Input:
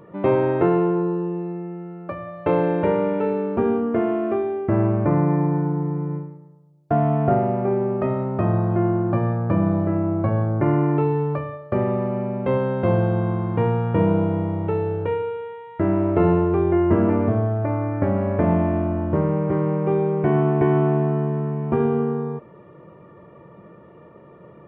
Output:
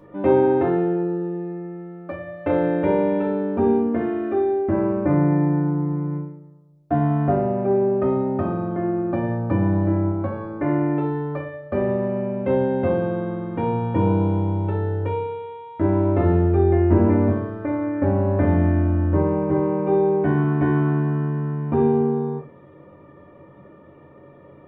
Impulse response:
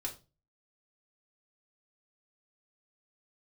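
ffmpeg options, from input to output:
-filter_complex "[0:a]asettb=1/sr,asplit=3[s0][s1][s2];[s0]atrim=end=10.104[s3];[s1]atrim=start=10.1:end=11.6,asetpts=PTS-STARTPTS,afade=t=in:d=0.004:c=qsin,afade=t=out:st=1.496:d=0.004:c=qsin,equalizer=f=110:t=o:w=2.2:g=-6[s4];[s2]atrim=start=11.596[s5];[s3][s4]acrossfade=d=0.004:c1=hsin:c2=qsin[s6];[s6][s5]acrossfade=d=0.004:c1=qsin:c2=hsin[s7];[1:a]atrim=start_sample=2205[s8];[s7][s8]afir=irnorm=-1:irlink=0,volume=0.891"

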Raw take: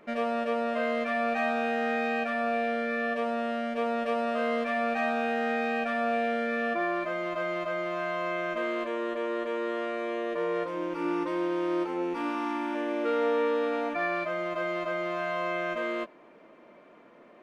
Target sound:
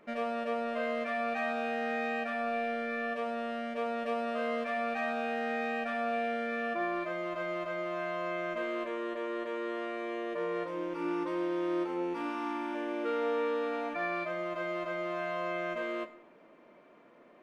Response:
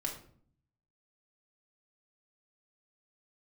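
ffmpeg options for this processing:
-filter_complex "[0:a]asplit=2[s0][s1];[1:a]atrim=start_sample=2205,asetrate=27342,aresample=44100,adelay=40[s2];[s1][s2]afir=irnorm=-1:irlink=0,volume=0.133[s3];[s0][s3]amix=inputs=2:normalize=0,volume=0.596"

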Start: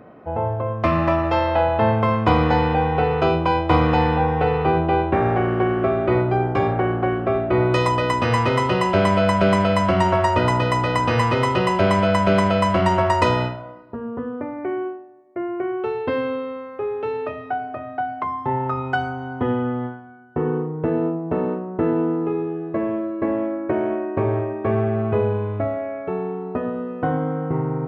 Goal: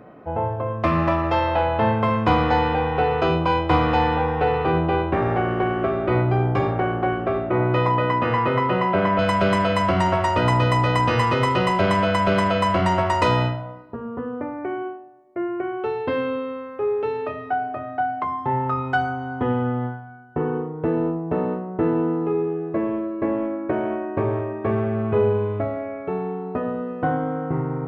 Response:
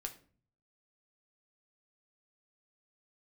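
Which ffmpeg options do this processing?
-filter_complex "[0:a]asoftclip=type=tanh:threshold=0.398,asettb=1/sr,asplit=3[s0][s1][s2];[s0]atrim=end=7.504[s3];[s1]atrim=start=7.5:end=9.19,asetpts=PTS-STARTPTS,afade=t=in:d=0.004:c=qsin,afade=t=out:st=1.686:d=0.004:c=qsin,highpass=120,lowpass=2200[s4];[s2]atrim=start=9.186[s5];[s3][s4]acrossfade=d=0.004:c1=hsin:c2=qsin[s6];[s6][s5]acrossfade=d=0.004:c1=qsin:c2=hsin,asplit=2[s7][s8];[1:a]atrim=start_sample=2205[s9];[s8][s9]afir=irnorm=-1:irlink=0,volume=1.5[s10];[s7][s10]amix=inputs=2:normalize=0,volume=0.473"

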